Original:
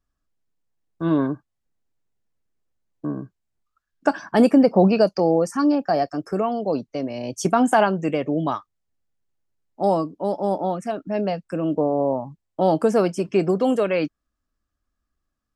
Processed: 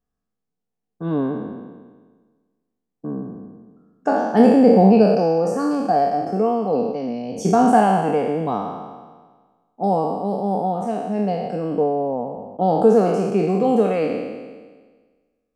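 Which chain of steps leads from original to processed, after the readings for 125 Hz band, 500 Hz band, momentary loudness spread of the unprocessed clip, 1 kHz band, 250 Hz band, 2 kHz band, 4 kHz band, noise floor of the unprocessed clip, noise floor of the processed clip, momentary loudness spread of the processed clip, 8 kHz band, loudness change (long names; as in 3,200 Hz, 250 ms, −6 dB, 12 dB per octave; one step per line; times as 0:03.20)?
+3.0 dB, +2.5 dB, 12 LU, +4.5 dB, +2.5 dB, −2.0 dB, −3.0 dB, −80 dBFS, −80 dBFS, 17 LU, −2.0 dB, +2.5 dB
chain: peak hold with a decay on every bin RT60 1.48 s
hollow resonant body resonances 210/450/730 Hz, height 13 dB, ringing for 35 ms
level −9 dB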